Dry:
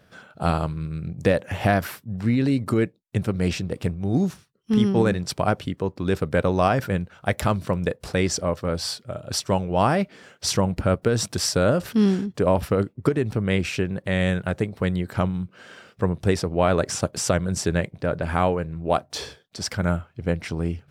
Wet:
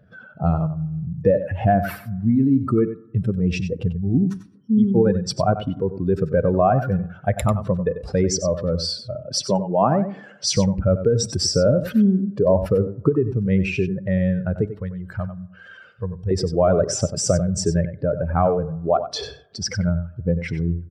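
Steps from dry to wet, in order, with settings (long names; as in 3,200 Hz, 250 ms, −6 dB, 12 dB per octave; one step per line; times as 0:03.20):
expanding power law on the bin magnitudes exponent 2
0:09.15–0:10.57: high-pass filter 150 Hz 24 dB per octave
0:14.65–0:16.31: parametric band 280 Hz −14 dB 2.1 octaves
single-tap delay 94 ms −11.5 dB
dense smooth reverb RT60 1 s, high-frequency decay 0.3×, DRR 19.5 dB
level +3 dB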